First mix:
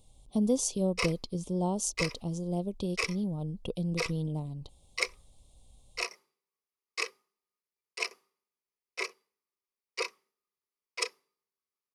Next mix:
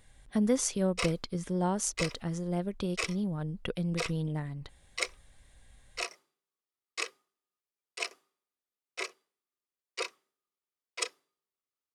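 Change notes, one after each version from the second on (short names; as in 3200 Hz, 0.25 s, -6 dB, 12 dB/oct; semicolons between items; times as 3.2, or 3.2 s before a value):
speech: remove Butterworth band-stop 1700 Hz, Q 0.74; background: remove ripple EQ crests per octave 0.85, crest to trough 7 dB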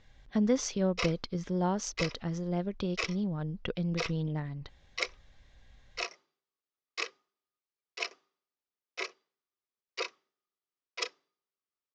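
master: add steep low-pass 6300 Hz 48 dB/oct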